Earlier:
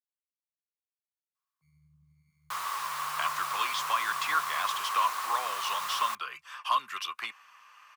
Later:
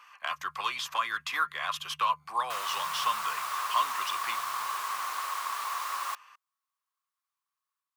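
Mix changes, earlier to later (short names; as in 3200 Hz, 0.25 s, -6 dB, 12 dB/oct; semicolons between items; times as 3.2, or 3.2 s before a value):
speech: entry -2.95 s; first sound: entry -1.35 s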